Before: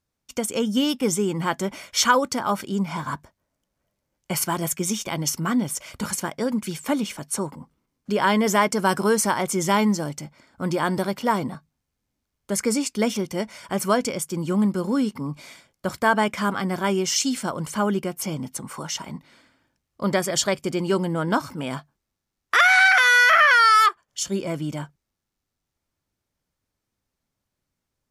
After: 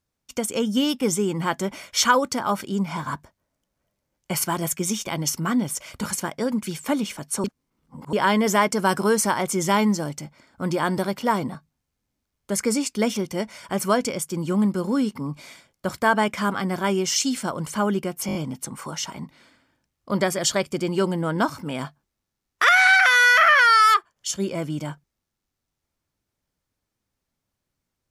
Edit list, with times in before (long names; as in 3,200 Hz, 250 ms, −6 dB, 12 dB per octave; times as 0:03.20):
0:07.44–0:08.13: reverse
0:18.27: stutter 0.02 s, 5 plays